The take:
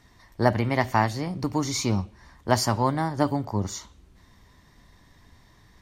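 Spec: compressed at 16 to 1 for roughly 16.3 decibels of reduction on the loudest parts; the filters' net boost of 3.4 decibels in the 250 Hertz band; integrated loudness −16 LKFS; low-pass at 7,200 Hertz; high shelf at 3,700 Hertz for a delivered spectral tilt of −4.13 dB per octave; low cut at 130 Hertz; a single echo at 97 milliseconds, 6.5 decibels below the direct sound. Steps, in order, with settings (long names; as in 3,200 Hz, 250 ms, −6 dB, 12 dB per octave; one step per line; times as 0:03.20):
high-pass filter 130 Hz
low-pass filter 7,200 Hz
parametric band 250 Hz +4.5 dB
high-shelf EQ 3,700 Hz +8.5 dB
downward compressor 16 to 1, threshold −29 dBFS
single-tap delay 97 ms −6.5 dB
level +18 dB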